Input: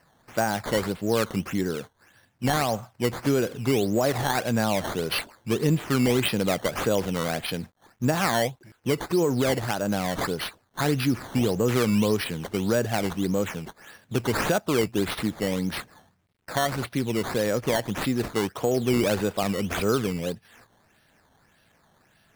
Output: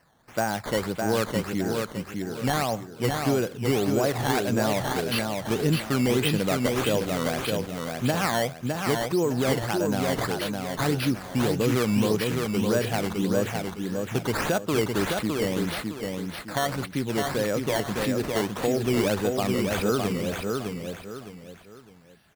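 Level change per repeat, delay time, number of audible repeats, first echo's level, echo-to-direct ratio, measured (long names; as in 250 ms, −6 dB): −9.5 dB, 610 ms, 3, −4.0 dB, −3.5 dB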